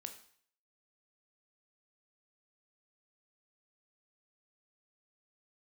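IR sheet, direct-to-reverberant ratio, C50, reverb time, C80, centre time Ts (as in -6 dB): 6.0 dB, 10.5 dB, 0.55 s, 13.5 dB, 13 ms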